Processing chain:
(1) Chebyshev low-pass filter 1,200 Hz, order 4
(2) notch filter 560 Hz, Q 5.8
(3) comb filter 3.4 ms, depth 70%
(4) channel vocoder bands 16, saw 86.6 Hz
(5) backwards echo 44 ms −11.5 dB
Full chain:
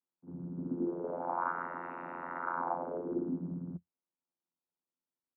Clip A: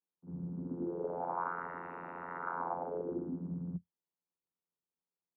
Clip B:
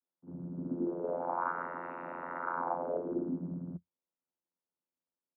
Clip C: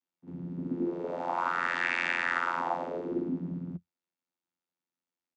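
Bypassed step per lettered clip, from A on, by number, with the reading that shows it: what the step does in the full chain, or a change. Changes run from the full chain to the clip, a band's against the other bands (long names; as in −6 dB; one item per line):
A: 3, change in momentary loudness spread −2 LU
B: 2, 500 Hz band +2.0 dB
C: 1, 2 kHz band +11.5 dB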